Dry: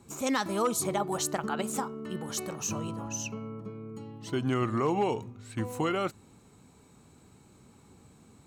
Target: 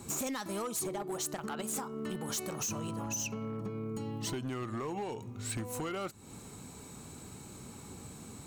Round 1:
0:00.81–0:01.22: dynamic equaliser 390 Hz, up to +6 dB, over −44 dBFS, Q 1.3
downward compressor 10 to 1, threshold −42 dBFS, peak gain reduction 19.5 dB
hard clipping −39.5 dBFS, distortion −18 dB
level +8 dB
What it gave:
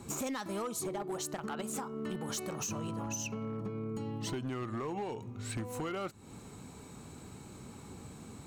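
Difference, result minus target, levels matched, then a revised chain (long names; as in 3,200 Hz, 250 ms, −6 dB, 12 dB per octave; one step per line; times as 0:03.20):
8,000 Hz band −3.0 dB
0:00.81–0:01.22: dynamic equaliser 390 Hz, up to +6 dB, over −44 dBFS, Q 1.3
downward compressor 10 to 1, threshold −42 dBFS, peak gain reduction 19.5 dB
high-shelf EQ 5,500 Hz +8.5 dB
hard clipping −39.5 dBFS, distortion −13 dB
level +8 dB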